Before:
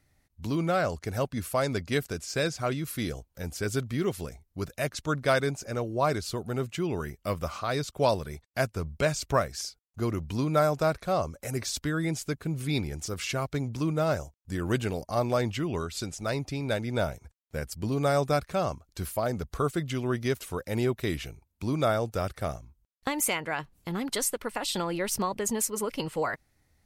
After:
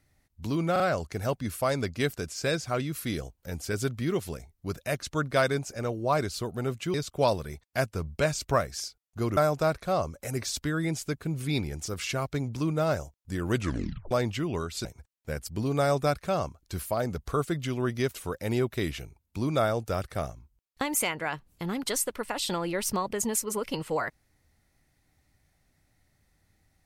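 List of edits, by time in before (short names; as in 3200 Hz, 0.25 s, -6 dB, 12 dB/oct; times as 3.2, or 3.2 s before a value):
0.72 stutter 0.04 s, 3 plays
6.86–7.75 cut
10.18–10.57 cut
14.75 tape stop 0.56 s
16.05–17.11 cut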